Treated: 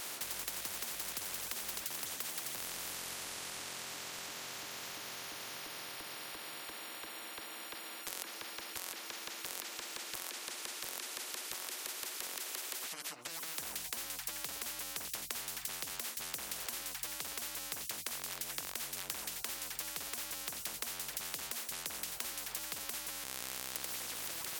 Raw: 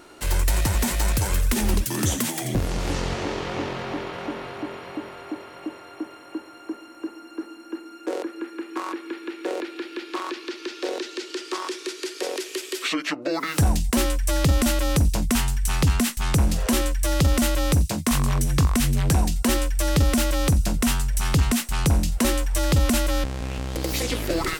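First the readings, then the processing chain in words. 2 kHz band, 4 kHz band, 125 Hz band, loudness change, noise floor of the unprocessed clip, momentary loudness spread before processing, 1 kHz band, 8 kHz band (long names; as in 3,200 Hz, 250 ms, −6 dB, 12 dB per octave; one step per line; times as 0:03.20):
−12.5 dB, −10.5 dB, −37.5 dB, −15.5 dB, −44 dBFS, 14 LU, −16.5 dB, −9.5 dB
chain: high-pass filter 720 Hz 12 dB per octave
downward compressor 12 to 1, threshold −41 dBFS, peak gain reduction 19 dB
every bin compressed towards the loudest bin 10 to 1
level +8 dB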